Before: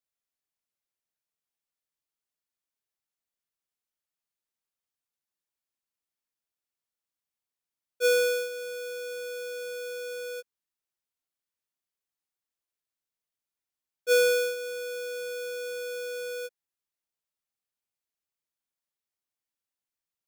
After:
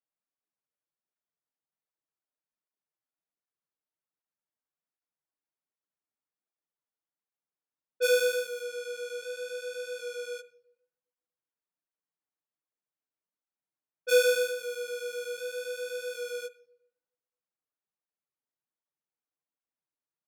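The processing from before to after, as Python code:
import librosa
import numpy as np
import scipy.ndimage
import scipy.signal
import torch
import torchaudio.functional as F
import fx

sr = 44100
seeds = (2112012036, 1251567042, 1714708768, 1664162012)

y = scipy.signal.sosfilt(scipy.signal.butter(4, 130.0, 'highpass', fs=sr, output='sos'), x)
y = fx.env_lowpass(y, sr, base_hz=1500.0, full_db=-31.0)
y = fx.room_shoebox(y, sr, seeds[0], volume_m3=3400.0, walls='furnished', distance_m=0.54)
y = fx.flanger_cancel(y, sr, hz=1.3, depth_ms=6.3)
y = y * librosa.db_to_amplitude(2.0)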